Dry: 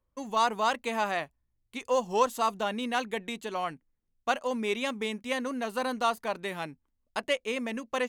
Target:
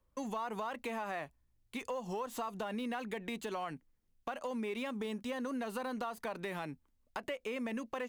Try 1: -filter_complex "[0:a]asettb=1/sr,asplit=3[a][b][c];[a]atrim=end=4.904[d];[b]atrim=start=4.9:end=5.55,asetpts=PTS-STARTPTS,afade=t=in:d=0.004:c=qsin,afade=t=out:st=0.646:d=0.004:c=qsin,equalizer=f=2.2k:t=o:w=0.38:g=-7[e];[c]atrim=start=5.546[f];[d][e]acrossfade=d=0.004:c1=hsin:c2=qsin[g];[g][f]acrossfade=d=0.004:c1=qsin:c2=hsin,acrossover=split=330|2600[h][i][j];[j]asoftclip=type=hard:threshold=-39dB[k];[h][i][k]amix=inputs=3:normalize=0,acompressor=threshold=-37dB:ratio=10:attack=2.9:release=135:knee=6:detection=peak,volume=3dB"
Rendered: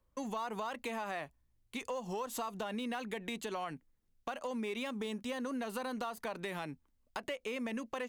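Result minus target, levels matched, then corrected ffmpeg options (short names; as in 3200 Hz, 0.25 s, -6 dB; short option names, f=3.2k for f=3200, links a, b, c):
hard clip: distortion -6 dB
-filter_complex "[0:a]asettb=1/sr,asplit=3[a][b][c];[a]atrim=end=4.904[d];[b]atrim=start=4.9:end=5.55,asetpts=PTS-STARTPTS,afade=t=in:d=0.004:c=qsin,afade=t=out:st=0.646:d=0.004:c=qsin,equalizer=f=2.2k:t=o:w=0.38:g=-7[e];[c]atrim=start=5.546[f];[d][e]acrossfade=d=0.004:c1=hsin:c2=qsin[g];[g][f]acrossfade=d=0.004:c1=qsin:c2=hsin,acrossover=split=330|2600[h][i][j];[j]asoftclip=type=hard:threshold=-48.5dB[k];[h][i][k]amix=inputs=3:normalize=0,acompressor=threshold=-37dB:ratio=10:attack=2.9:release=135:knee=6:detection=peak,volume=3dB"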